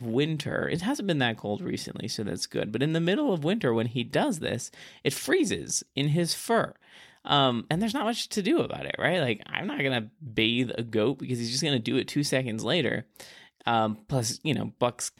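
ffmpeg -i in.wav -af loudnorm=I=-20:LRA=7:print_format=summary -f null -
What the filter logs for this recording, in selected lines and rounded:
Input Integrated:    -27.8 LUFS
Input True Peak:      -9.6 dBTP
Input LRA:             2.0 LU
Input Threshold:     -38.1 LUFS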